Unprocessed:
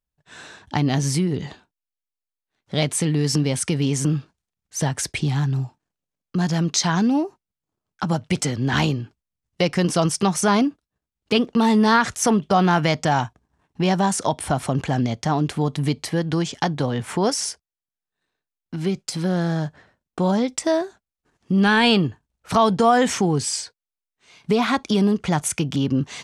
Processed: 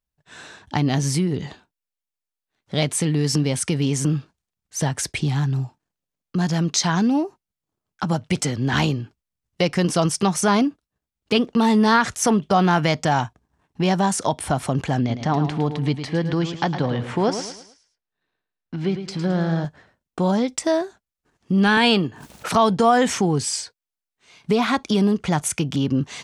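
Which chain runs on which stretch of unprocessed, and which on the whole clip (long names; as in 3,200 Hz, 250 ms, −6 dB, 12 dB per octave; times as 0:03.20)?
0:14.98–0:19.65: low-pass filter 4,200 Hz + repeating echo 108 ms, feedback 37%, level −9.5 dB
0:21.77–0:22.55: high-pass filter 170 Hz + background raised ahead of every attack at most 49 dB per second
whole clip: no processing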